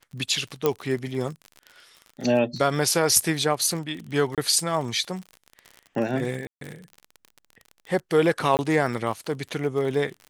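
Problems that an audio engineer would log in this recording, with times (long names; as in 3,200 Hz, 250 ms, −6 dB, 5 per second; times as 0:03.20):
surface crackle 43 per second −31 dBFS
0:00.66: click −8 dBFS
0:04.35–0:04.38: drop-out 27 ms
0:06.47–0:06.61: drop-out 143 ms
0:08.57–0:08.59: drop-out 19 ms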